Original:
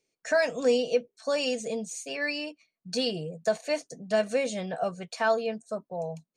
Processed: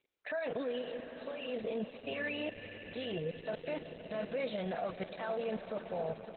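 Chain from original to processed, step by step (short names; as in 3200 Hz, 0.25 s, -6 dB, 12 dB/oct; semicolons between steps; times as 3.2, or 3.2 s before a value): 4.65–5.07 gate with hold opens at -35 dBFS; low shelf 150 Hz -9.5 dB; level quantiser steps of 20 dB; limiter -37 dBFS, peak gain reduction 8.5 dB; 0.81–1.48 compressor 4:1, threshold -48 dBFS, peak gain reduction 6.5 dB; 2.03–3.17 buzz 100 Hz, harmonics 25, -67 dBFS -8 dB/oct; on a send: swelling echo 94 ms, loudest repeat 5, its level -16.5 dB; on the sum: gain +8.5 dB; Opus 8 kbps 48000 Hz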